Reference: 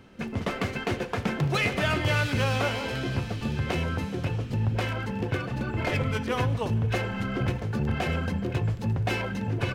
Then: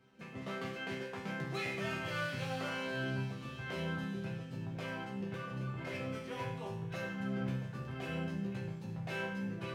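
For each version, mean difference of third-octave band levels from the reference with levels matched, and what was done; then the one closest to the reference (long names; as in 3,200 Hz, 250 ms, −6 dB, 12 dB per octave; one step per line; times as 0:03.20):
4.0 dB: high-pass filter 59 Hz
resonators tuned to a chord C3 major, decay 0.68 s
level +6.5 dB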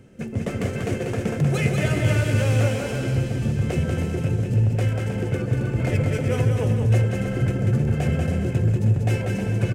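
5.0 dB: graphic EQ with 10 bands 125 Hz +7 dB, 500 Hz +5 dB, 1,000 Hz −10 dB, 4,000 Hz −9 dB, 8,000 Hz +8 dB
bouncing-ball delay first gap 190 ms, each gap 0.65×, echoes 5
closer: first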